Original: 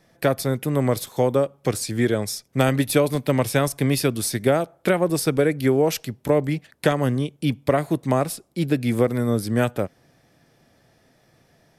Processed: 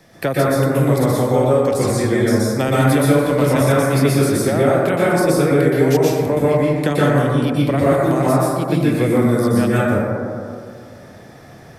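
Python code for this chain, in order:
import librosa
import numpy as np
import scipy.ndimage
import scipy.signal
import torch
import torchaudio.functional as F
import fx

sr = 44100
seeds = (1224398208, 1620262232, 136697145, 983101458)

y = fx.rev_plate(x, sr, seeds[0], rt60_s=1.7, hf_ratio=0.3, predelay_ms=110, drr_db=-8.0)
y = fx.band_squash(y, sr, depth_pct=40)
y = y * librosa.db_to_amplitude(-3.0)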